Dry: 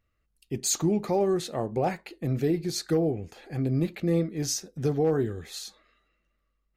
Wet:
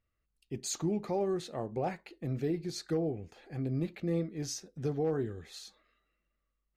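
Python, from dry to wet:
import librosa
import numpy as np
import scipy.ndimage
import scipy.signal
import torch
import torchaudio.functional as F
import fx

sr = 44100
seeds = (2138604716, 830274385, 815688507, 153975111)

y = fx.high_shelf(x, sr, hz=10000.0, db=-11.5)
y = y * 10.0 ** (-7.0 / 20.0)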